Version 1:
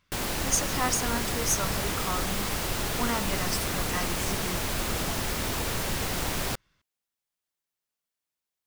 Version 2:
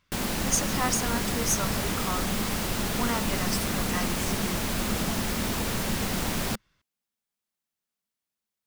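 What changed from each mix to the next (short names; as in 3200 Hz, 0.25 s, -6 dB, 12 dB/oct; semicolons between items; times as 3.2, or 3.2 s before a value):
background: add bell 210 Hz +9.5 dB 0.53 oct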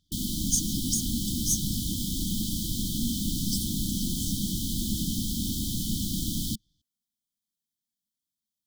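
master: add brick-wall FIR band-stop 340–3000 Hz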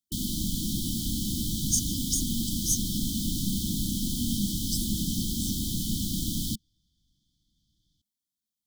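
speech: entry +1.20 s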